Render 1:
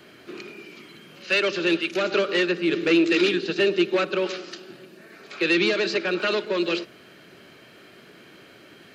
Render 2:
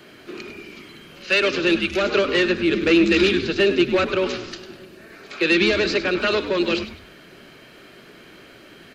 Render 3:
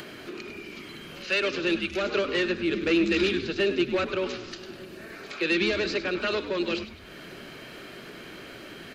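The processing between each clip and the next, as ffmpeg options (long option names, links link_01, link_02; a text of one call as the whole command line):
ffmpeg -i in.wav -filter_complex "[0:a]asplit=4[link_01][link_02][link_03][link_04];[link_02]adelay=100,afreqshift=-130,volume=-12dB[link_05];[link_03]adelay=200,afreqshift=-260,volume=-21.4dB[link_06];[link_04]adelay=300,afreqshift=-390,volume=-30.7dB[link_07];[link_01][link_05][link_06][link_07]amix=inputs=4:normalize=0,volume=3dB" out.wav
ffmpeg -i in.wav -af "acompressor=mode=upward:threshold=-25dB:ratio=2.5,volume=-7dB" out.wav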